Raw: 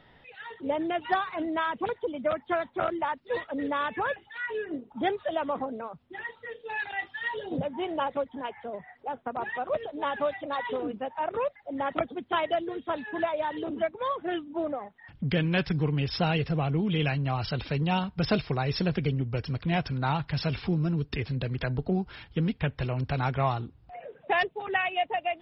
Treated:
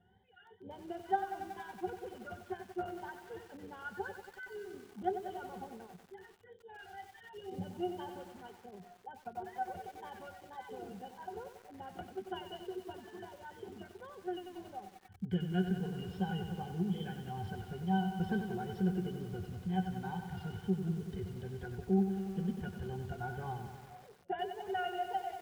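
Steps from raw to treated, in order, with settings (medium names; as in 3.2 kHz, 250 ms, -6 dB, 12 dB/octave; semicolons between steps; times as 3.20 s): pitch-class resonator F#, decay 0.1 s; wow and flutter 70 cents; bit-crushed delay 93 ms, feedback 80%, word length 9-bit, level -8.5 dB; trim -1.5 dB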